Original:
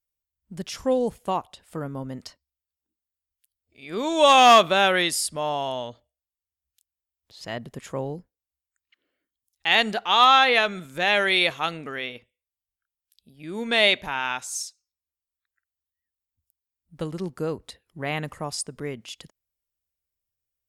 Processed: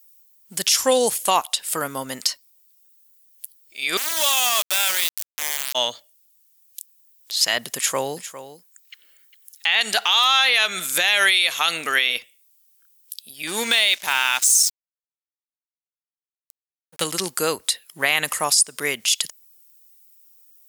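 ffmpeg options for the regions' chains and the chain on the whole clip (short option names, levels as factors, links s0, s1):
-filter_complex "[0:a]asettb=1/sr,asplit=3[s0][s1][s2];[s0]atrim=end=3.974[s3];[s1]atrim=start=3.97:end=5.75,asetpts=PTS-STARTPTS,afade=t=in:d=0.004:c=qsin,afade=t=out:st=1.776:d=0.004:c=qsin,adynamicsmooth=sensitivity=6:basefreq=550,aeval=exprs='val(0)*gte(abs(val(0)),0.0944)':c=same[s4];[s2]atrim=start=5.746[s5];[s3][s4]acrossfade=d=0.004:c1=hsin:c2=qsin[s6];[s6][s5]acrossfade=d=0.004:c1=qsin:c2=hsin,asettb=1/sr,asplit=3[s7][s8][s9];[s7]atrim=end=7.764[s10];[s8]atrim=start=7.76:end=9.81,asetpts=PTS-STARTPTS,afade=t=in:d=0.004:c=qsin,afade=t=out:st=2.046:d=0.004:c=qsin,acrossover=split=3600[s11][s12];[s12]acompressor=threshold=0.00794:ratio=4:attack=1:release=60[s13];[s11][s13]amix=inputs=2:normalize=0,aecho=1:1:404:0.211,atrim=end_sample=90405[s14];[s9]atrim=start=9.806[s15];[s10][s14]acrossfade=d=0.004:c1=hsin:c2=qsin[s16];[s16][s15]acrossfade=d=0.004:c1=qsin:c2=hsin,asettb=1/sr,asplit=3[s17][s18][s19];[s17]atrim=end=13.474[s20];[s18]atrim=start=13.47:end=17.04,asetpts=PTS-STARTPTS,afade=t=in:d=0.004:c=qsin,afade=t=out:st=3.566:d=0.004:c=qsin,equalizer=f=91:w=0.81:g=6,aeval=exprs='sgn(val(0))*max(abs(val(0))-0.00531,0)':c=same[s21];[s19]atrim=start=17.036[s22];[s20][s21]acrossfade=d=0.004:c1=hsin:c2=qsin[s23];[s23][s22]acrossfade=d=0.004:c1=qsin:c2=hsin,aderivative,acompressor=threshold=0.0158:ratio=10,alimiter=level_in=47.3:limit=0.891:release=50:level=0:latency=1,volume=0.531"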